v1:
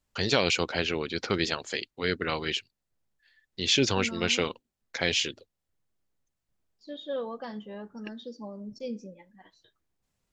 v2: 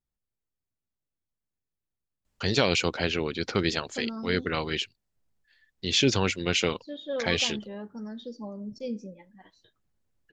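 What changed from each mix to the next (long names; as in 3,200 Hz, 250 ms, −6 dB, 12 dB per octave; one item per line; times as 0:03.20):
first voice: entry +2.25 s
master: add low-shelf EQ 270 Hz +4.5 dB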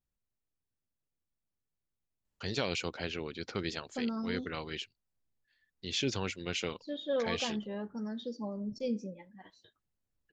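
first voice −10.0 dB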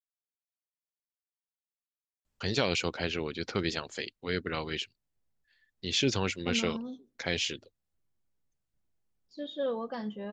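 first voice +5.0 dB
second voice: entry +2.50 s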